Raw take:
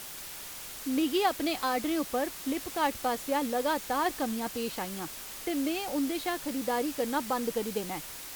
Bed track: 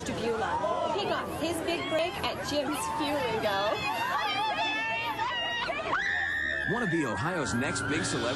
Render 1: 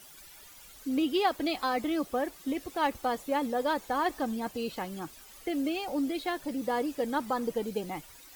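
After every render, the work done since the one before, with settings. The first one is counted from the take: noise reduction 13 dB, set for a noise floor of -43 dBFS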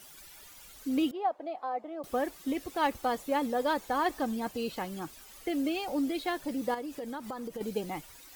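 1.11–2.04 s: band-pass filter 680 Hz, Q 2.6; 6.74–7.61 s: compression, threshold -35 dBFS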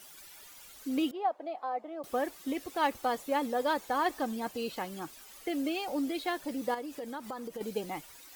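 bass shelf 160 Hz -9 dB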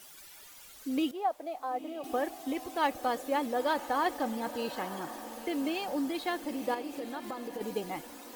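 echo that smears into a reverb 986 ms, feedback 46%, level -12 dB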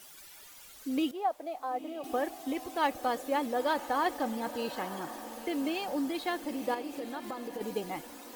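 no audible change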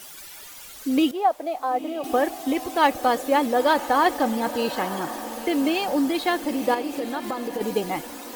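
trim +10 dB

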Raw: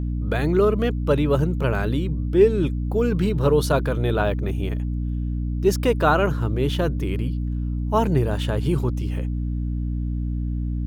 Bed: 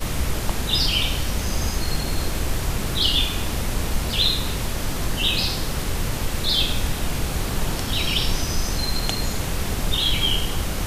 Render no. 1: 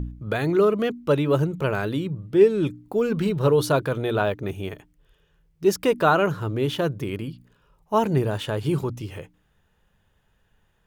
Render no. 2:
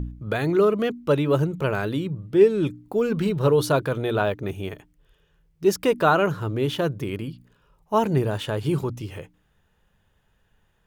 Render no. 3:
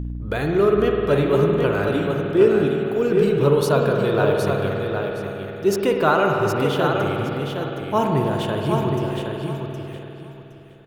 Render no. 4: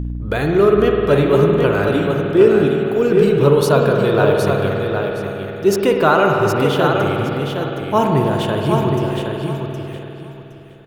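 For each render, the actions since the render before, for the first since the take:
de-hum 60 Hz, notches 5
no audible change
feedback delay 766 ms, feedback 22%, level -5.5 dB; spring tank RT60 3.4 s, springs 50 ms, chirp 40 ms, DRR 1 dB
trim +4.5 dB; peak limiter -1 dBFS, peak gain reduction 1.5 dB

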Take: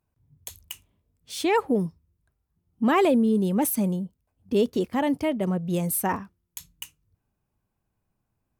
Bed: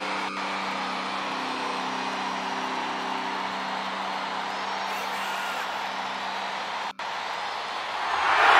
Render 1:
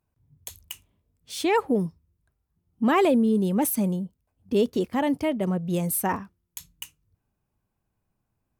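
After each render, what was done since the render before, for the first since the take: no audible change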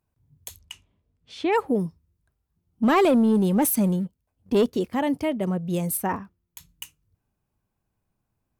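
0.57–1.51 s: low-pass 7.1 kHz -> 2.7 kHz; 2.83–4.66 s: waveshaping leveller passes 1; 5.97–6.69 s: peaking EQ 8.3 kHz -6.5 dB 2.6 oct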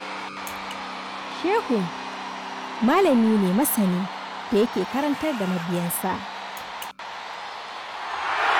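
add bed -3.5 dB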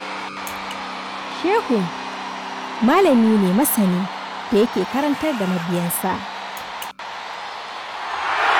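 trim +4 dB

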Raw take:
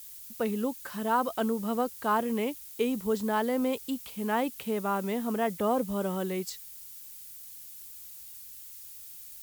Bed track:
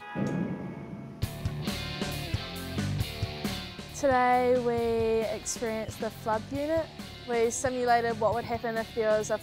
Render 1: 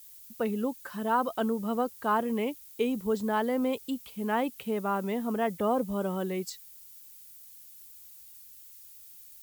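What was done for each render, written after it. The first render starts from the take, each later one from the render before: noise reduction 6 dB, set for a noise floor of -46 dBFS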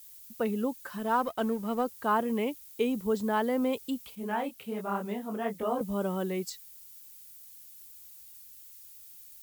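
0.98–1.84 s: companding laws mixed up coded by A; 4.15–5.81 s: detune thickener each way 44 cents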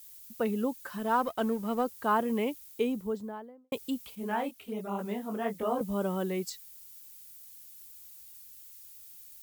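2.62–3.72 s: studio fade out; 4.51–4.99 s: touch-sensitive flanger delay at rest 4.4 ms, full sweep at -30.5 dBFS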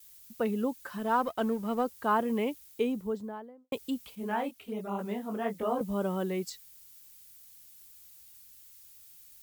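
gate with hold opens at -44 dBFS; treble shelf 6.6 kHz -4 dB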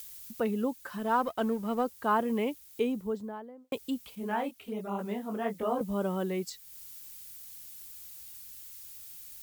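upward compressor, threshold -38 dBFS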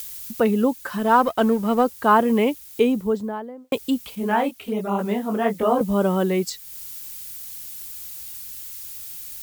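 trim +11 dB

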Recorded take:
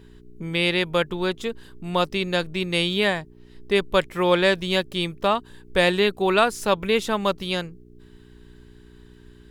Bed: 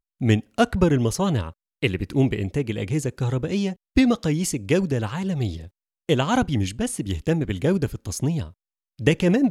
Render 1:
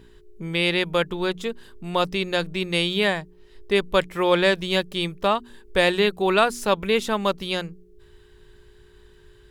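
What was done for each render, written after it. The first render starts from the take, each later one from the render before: de-hum 60 Hz, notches 5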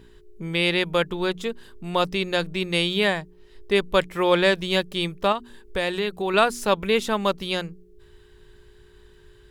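5.32–6.34 s: compression 2:1, threshold -25 dBFS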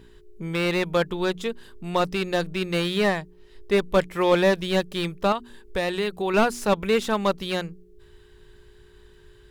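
slew-rate limiter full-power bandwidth 170 Hz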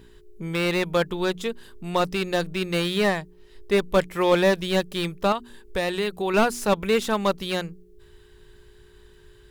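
treble shelf 7.8 kHz +5 dB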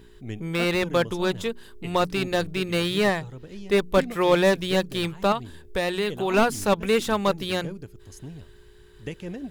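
add bed -16.5 dB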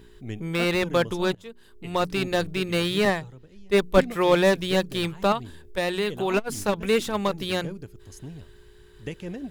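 1.35–2.18 s: fade in, from -22 dB; 3.05–4.01 s: three bands expanded up and down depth 70%; 5.41–7.34 s: transformer saturation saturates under 340 Hz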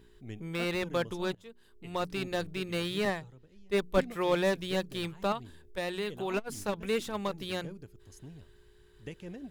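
trim -8.5 dB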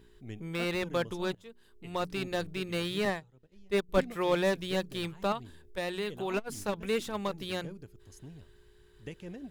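3.14–3.89 s: transient shaper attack 0 dB, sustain -11 dB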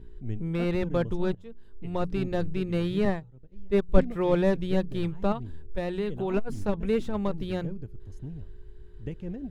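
tilt EQ -3.5 dB/octave; band-stop 1.1 kHz, Q 26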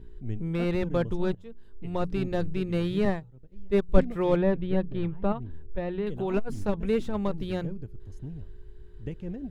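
4.36–6.07 s: distance through air 310 m

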